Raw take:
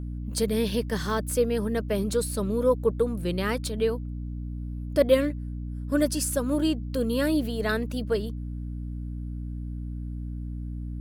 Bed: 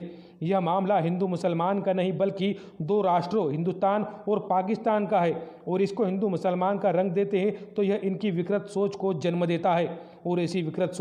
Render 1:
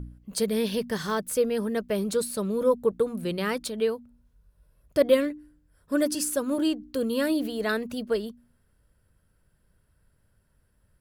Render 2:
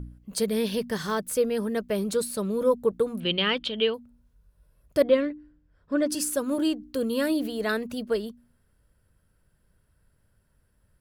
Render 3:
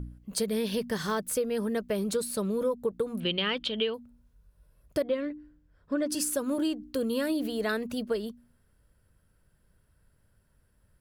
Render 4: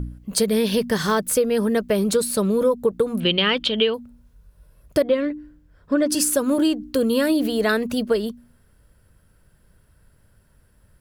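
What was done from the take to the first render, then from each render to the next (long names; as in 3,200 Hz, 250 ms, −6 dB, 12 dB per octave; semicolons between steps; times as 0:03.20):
hum removal 60 Hz, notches 5
0:03.20–0:03.94: low-pass with resonance 3,100 Hz, resonance Q 7.6; 0:05.03–0:06.10: high-frequency loss of the air 160 metres
downward compressor 6 to 1, threshold −25 dBFS, peak gain reduction 10.5 dB
level +9.5 dB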